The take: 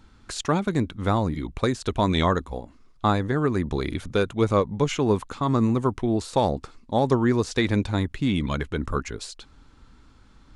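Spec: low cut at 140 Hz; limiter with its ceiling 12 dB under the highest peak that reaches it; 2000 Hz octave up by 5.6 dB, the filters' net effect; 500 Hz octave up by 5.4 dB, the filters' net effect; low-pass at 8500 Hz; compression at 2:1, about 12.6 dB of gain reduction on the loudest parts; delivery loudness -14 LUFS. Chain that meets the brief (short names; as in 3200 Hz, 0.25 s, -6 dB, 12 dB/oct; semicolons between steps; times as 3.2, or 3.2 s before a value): HPF 140 Hz; LPF 8500 Hz; bell 500 Hz +6.5 dB; bell 2000 Hz +6.5 dB; compressor 2:1, threshold -36 dBFS; gain +23.5 dB; limiter -1.5 dBFS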